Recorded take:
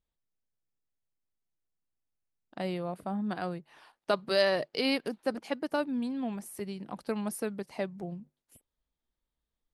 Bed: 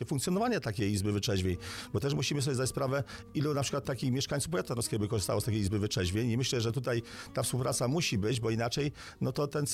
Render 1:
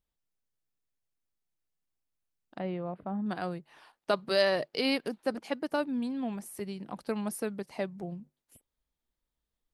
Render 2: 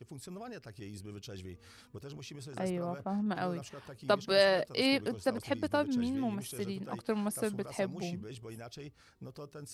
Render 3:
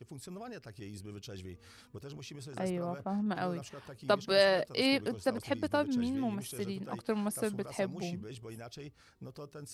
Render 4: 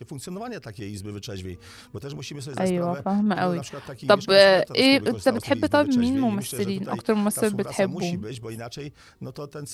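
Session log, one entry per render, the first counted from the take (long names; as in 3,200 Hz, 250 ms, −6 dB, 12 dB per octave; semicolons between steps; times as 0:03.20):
0:02.59–0:03.26: high-frequency loss of the air 460 metres
mix in bed −15 dB
no processing that can be heard
level +11 dB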